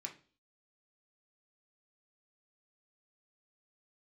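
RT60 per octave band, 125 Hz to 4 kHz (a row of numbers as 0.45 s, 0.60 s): 0.45 s, 0.50 s, 0.45 s, 0.35 s, 0.35 s, 0.45 s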